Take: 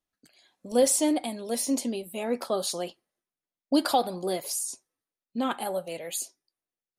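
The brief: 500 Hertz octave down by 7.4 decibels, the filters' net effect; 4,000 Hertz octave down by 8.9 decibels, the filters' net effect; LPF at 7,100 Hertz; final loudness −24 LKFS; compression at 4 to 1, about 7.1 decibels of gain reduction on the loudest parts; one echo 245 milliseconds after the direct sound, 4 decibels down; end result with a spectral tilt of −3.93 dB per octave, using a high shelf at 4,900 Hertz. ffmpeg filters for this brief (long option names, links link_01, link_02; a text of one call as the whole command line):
ffmpeg -i in.wav -af "lowpass=7100,equalizer=frequency=500:width_type=o:gain=-8.5,equalizer=frequency=4000:width_type=o:gain=-8,highshelf=frequency=4900:gain=-5.5,acompressor=threshold=-30dB:ratio=4,aecho=1:1:245:0.631,volume=12dB" out.wav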